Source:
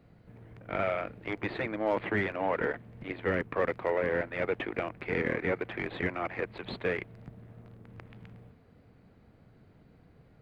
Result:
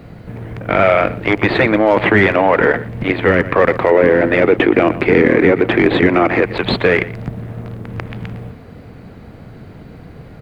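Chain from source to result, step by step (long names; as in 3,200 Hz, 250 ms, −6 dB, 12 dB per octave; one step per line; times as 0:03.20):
0:03.91–0:06.42: parametric band 310 Hz +8.5 dB 1.2 octaves
single-tap delay 119 ms −20 dB
boost into a limiter +23.5 dB
level −1 dB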